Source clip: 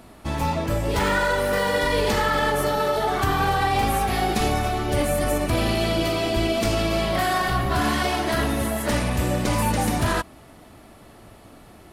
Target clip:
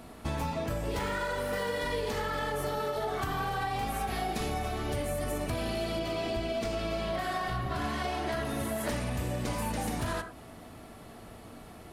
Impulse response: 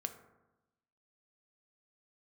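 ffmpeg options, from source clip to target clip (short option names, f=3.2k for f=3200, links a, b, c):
-filter_complex "[1:a]atrim=start_sample=2205,afade=t=out:st=0.16:d=0.01,atrim=end_sample=7497[a];[0:a][a]afir=irnorm=-1:irlink=0,acompressor=threshold=-29dB:ratio=10,asettb=1/sr,asplit=3[b][c][d];[b]atrim=end=5.994[e];[c]atrim=start=5.99:end=8.45,asetpts=PTS-STARTPTS,afade=t=in:d=0.004:c=qsin,afade=t=out:st=2.456:d=0.004:c=qsin,highshelf=f=8k:g=-8[f];[d]atrim=start=8.446[g];[e][f]acrossfade=d=0.004:c1=hsin:c2=qsin[h];[h][g]acrossfade=d=0.004:c1=qsin:c2=hsin"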